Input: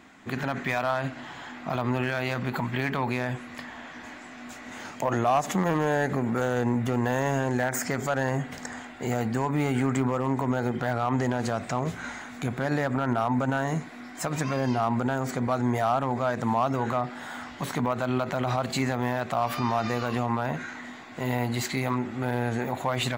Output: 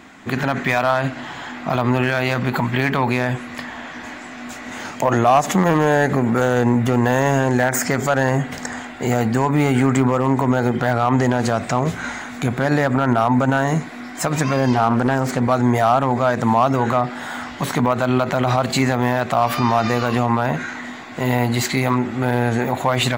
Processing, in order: 14.73–15.4 Doppler distortion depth 0.42 ms; gain +9 dB

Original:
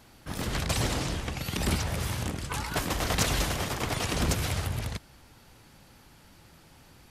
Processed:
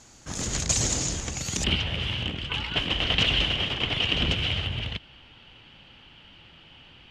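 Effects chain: synth low-pass 6800 Hz, resonance Q 8.5, from 1.64 s 3000 Hz; dynamic EQ 1100 Hz, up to -5 dB, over -40 dBFS, Q 0.84

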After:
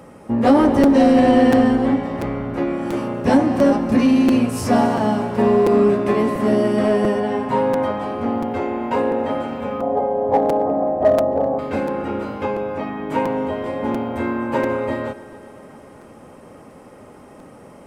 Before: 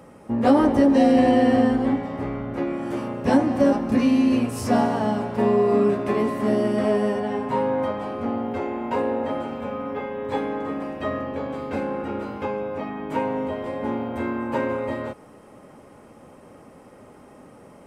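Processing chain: 9.81–11.59 synth low-pass 700 Hz, resonance Q 7.1; in parallel at -3.5 dB: hard clip -15.5 dBFS, distortion -13 dB; on the sum: multi-head echo 0.132 s, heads first and second, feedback 65%, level -22.5 dB; crackling interface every 0.69 s, samples 256, repeat, from 0.83

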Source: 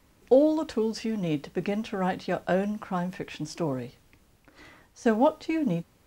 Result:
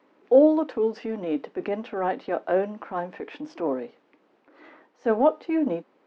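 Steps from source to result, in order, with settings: HPF 290 Hz 24 dB/oct; transient shaper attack -7 dB, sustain -2 dB; tape spacing loss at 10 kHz 40 dB; gain +8.5 dB

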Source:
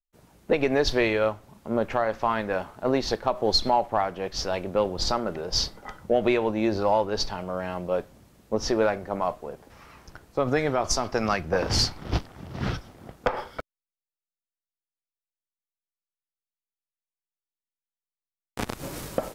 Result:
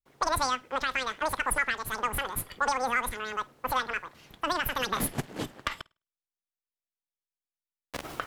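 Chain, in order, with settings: high shelf 9700 Hz -12 dB; analogue delay 0.121 s, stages 4096, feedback 30%, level -23.5 dB; speed mistake 33 rpm record played at 78 rpm; gain -4.5 dB

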